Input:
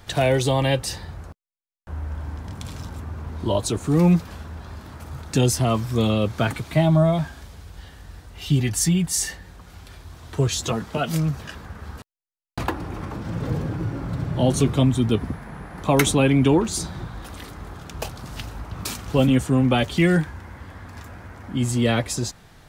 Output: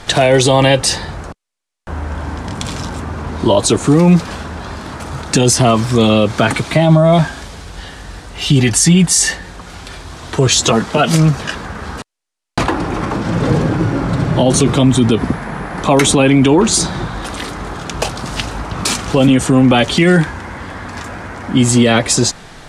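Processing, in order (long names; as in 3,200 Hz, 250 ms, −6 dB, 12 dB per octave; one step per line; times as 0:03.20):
low-pass filter 10,000 Hz 24 dB per octave
parametric band 76 Hz −9.5 dB 1.7 octaves
boost into a limiter +16.5 dB
level −1 dB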